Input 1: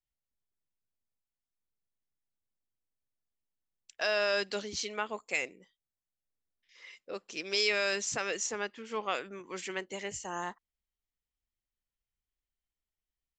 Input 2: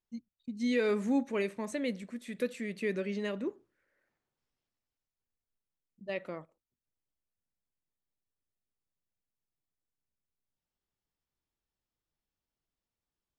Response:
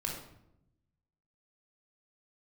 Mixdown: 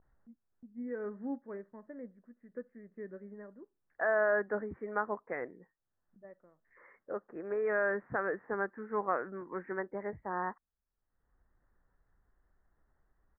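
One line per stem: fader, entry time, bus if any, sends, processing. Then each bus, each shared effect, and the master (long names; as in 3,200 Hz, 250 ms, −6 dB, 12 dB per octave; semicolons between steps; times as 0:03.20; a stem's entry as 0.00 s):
+2.0 dB, 0.00 s, no send, pitch vibrato 0.31 Hz 62 cents
−8.5 dB, 0.15 s, no send, expander for the loud parts 1.5 to 1, over −43 dBFS; automatic ducking −14 dB, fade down 0.45 s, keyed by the first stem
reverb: not used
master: Butterworth low-pass 1,800 Hz 72 dB per octave; upward compression, threshold −54 dBFS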